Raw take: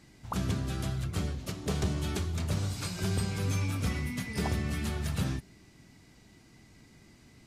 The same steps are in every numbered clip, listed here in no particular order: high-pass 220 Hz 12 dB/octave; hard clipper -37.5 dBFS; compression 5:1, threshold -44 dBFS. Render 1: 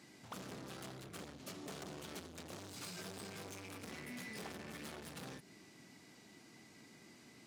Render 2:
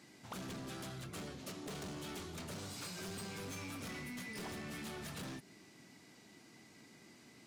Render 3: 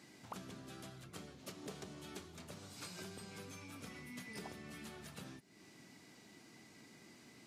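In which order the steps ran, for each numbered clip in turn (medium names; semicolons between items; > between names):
hard clipper > compression > high-pass; high-pass > hard clipper > compression; compression > high-pass > hard clipper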